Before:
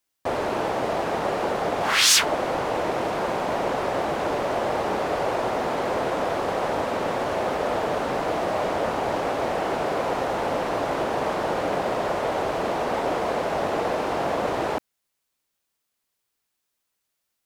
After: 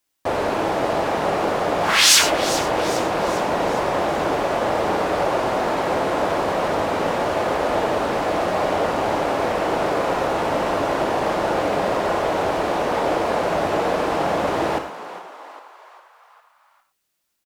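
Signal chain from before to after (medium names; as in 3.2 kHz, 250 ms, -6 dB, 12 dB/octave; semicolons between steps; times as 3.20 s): frequency-shifting echo 404 ms, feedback 51%, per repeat +100 Hz, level -13.5 dB; gated-style reverb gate 130 ms flat, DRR 6 dB; trim +3 dB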